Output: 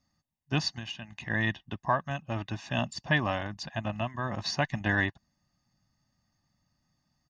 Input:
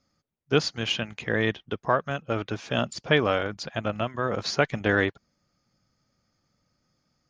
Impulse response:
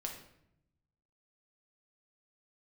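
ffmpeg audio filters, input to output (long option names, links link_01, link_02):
-filter_complex "[0:a]aecho=1:1:1.1:0.87,asplit=3[link_01][link_02][link_03];[link_01]afade=type=out:start_time=0.78:duration=0.02[link_04];[link_02]acompressor=threshold=-30dB:ratio=12,afade=type=in:start_time=0.78:duration=0.02,afade=type=out:start_time=1.29:duration=0.02[link_05];[link_03]afade=type=in:start_time=1.29:duration=0.02[link_06];[link_04][link_05][link_06]amix=inputs=3:normalize=0,volume=-5.5dB"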